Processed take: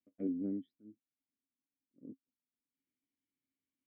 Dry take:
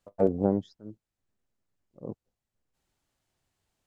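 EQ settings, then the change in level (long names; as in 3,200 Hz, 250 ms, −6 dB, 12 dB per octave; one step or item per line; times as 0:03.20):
formant filter i
high-frequency loss of the air 400 metres
0.0 dB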